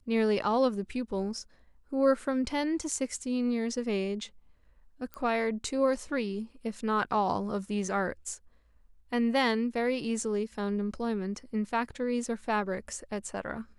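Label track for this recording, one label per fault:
5.140000	5.140000	click −24 dBFS

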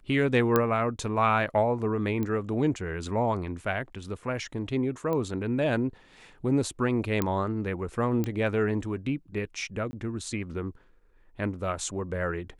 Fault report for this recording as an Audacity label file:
0.560000	0.560000	click −9 dBFS
2.230000	2.230000	click −19 dBFS
5.130000	5.130000	click −19 dBFS
7.220000	7.220000	click −12 dBFS
8.240000	8.240000	click −17 dBFS
9.910000	9.930000	drop-out 20 ms

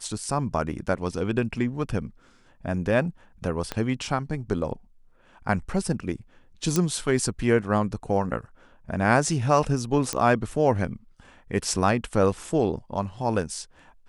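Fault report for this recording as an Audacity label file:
0.880000	0.880000	drop-out 3.7 ms
3.720000	3.720000	click −13 dBFS
6.760000	6.760000	click −9 dBFS
10.130000	10.130000	click −10 dBFS

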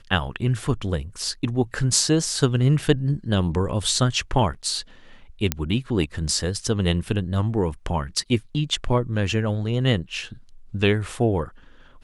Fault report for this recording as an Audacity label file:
5.520000	5.520000	click −4 dBFS

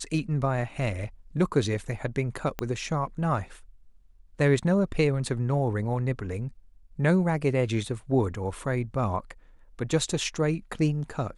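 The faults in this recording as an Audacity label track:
2.590000	2.590000	click −15 dBFS

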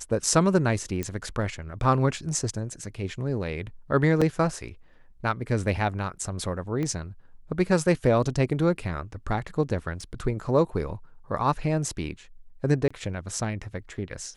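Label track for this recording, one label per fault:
1.030000	1.030000	click −16 dBFS
4.210000	4.220000	drop-out 5.9 ms
6.830000	6.830000	click −19 dBFS
10.010000	10.010000	drop-out 3.2 ms
12.880000	12.900000	drop-out 25 ms

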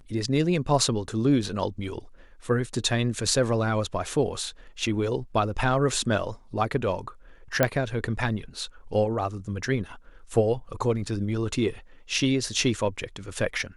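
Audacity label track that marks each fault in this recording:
7.630000	7.630000	click −6 dBFS

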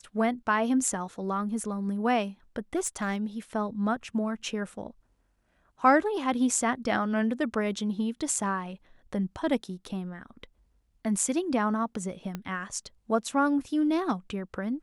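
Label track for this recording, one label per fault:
2.750000	3.160000	clipping −24 dBFS
12.350000	12.350000	click −20 dBFS

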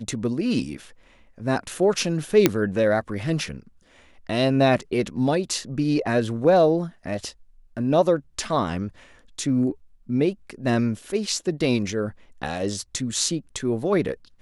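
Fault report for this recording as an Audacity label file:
2.460000	2.460000	click −1 dBFS

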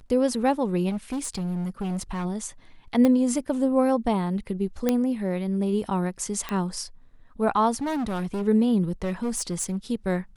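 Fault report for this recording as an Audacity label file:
0.890000	2.260000	clipping −25.5 dBFS
3.050000	3.050000	click −11 dBFS
4.890000	4.890000	click −9 dBFS
6.490000	6.490000	click −15 dBFS
7.760000	8.430000	clipping −25 dBFS
9.020000	9.770000	clipping −23 dBFS

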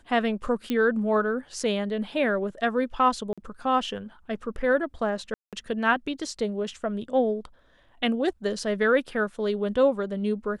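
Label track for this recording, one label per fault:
0.700000	0.700000	click −15 dBFS
3.330000	3.380000	drop-out 46 ms
5.340000	5.530000	drop-out 187 ms

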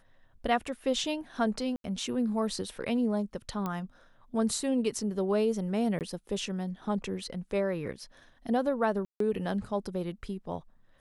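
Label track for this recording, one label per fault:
1.760000	1.840000	drop-out 82 ms
3.660000	3.660000	click −20 dBFS
5.990000	6.010000	drop-out 18 ms
9.050000	9.200000	drop-out 153 ms

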